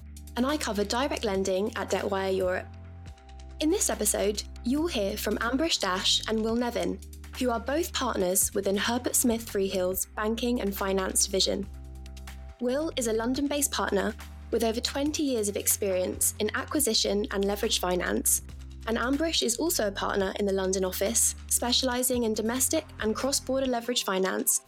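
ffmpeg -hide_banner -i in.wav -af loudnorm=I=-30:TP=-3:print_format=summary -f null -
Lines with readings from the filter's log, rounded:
Input Integrated:    -27.0 LUFS
Input True Peak:     -10.4 dBTP
Input LRA:             3.3 LU
Input Threshold:     -37.4 LUFS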